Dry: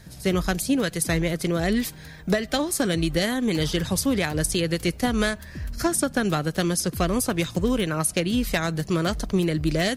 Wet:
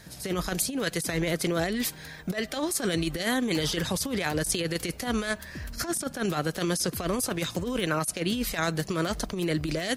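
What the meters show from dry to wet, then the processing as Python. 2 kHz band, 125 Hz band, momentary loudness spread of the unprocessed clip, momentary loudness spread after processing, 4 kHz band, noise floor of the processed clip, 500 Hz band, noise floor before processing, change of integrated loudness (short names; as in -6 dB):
-3.0 dB, -6.0 dB, 3 LU, 4 LU, -2.5 dB, -45 dBFS, -4.5 dB, -43 dBFS, -4.5 dB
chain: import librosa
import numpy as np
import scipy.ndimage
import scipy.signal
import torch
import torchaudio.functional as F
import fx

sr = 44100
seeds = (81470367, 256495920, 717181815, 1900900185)

y = fx.low_shelf(x, sr, hz=200.0, db=-10.0)
y = fx.over_compress(y, sr, threshold_db=-27.0, ratio=-0.5)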